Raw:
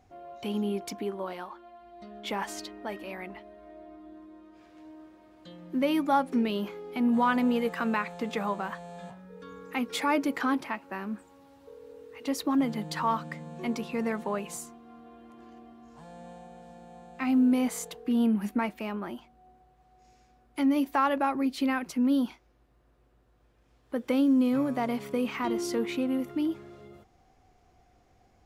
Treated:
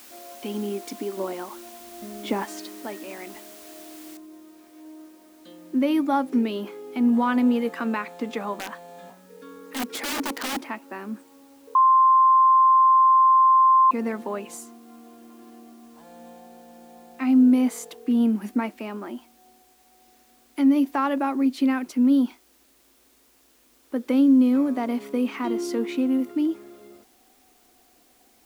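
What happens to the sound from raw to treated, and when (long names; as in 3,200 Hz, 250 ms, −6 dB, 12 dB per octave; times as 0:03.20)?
0:01.17–0:02.45: low-shelf EQ 440 Hz +11 dB
0:04.17: noise floor change −47 dB −61 dB
0:08.53–0:10.58: wrap-around overflow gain 24.5 dB
0:11.75–0:13.91: beep over 1,050 Hz −13 dBFS
whole clip: low shelf with overshoot 190 Hz −9.5 dB, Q 3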